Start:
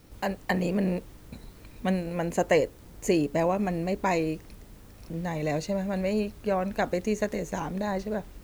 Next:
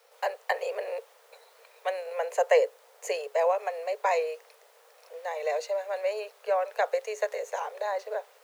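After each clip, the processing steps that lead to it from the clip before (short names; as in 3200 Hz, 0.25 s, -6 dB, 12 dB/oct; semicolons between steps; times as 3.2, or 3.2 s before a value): steep high-pass 450 Hz 96 dB/oct; tilt -1.5 dB/oct; gain +1 dB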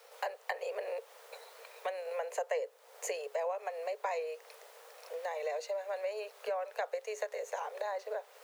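compressor 3:1, threshold -41 dBFS, peak gain reduction 17.5 dB; gain +3.5 dB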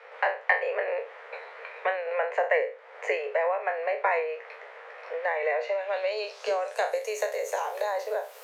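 spectral trails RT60 0.35 s; low-pass sweep 2000 Hz -> 14000 Hz, 5.61–7.13; gain +7 dB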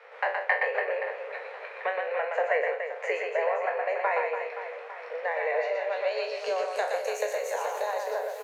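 reverse bouncing-ball echo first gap 0.12 s, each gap 1.4×, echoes 5; gain -2.5 dB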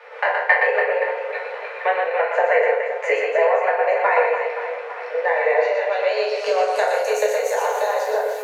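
FDN reverb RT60 0.51 s, low-frequency decay 1×, high-frequency decay 0.65×, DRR 0.5 dB; gain +6.5 dB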